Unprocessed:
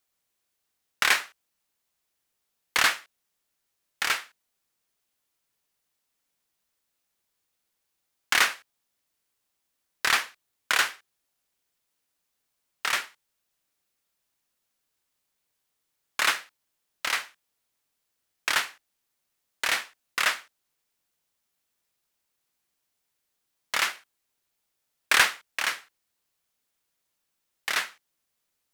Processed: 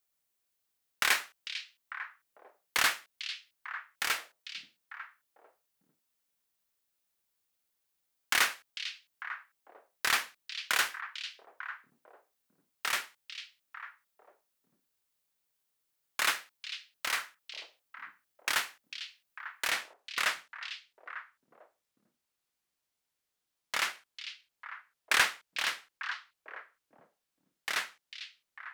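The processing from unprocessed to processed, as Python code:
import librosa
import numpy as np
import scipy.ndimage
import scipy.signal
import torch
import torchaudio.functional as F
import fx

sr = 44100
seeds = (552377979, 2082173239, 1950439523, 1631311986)

y = fx.high_shelf(x, sr, hz=11000.0, db=fx.steps((0.0, 6.5), (19.69, -3.0)))
y = fx.echo_stepped(y, sr, ms=448, hz=3600.0, octaves=-1.4, feedback_pct=70, wet_db=-6.5)
y = F.gain(torch.from_numpy(y), -5.5).numpy()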